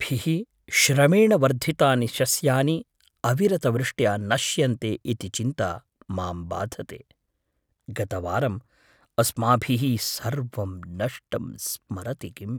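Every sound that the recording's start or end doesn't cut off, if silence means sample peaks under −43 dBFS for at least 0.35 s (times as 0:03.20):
0:07.88–0:08.59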